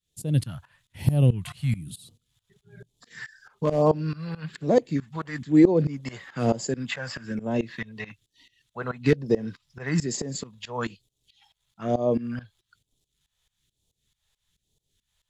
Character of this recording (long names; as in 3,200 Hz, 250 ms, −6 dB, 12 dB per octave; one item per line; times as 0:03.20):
phaser sweep stages 2, 1.1 Hz, lowest notch 280–1,500 Hz
tremolo saw up 4.6 Hz, depth 90%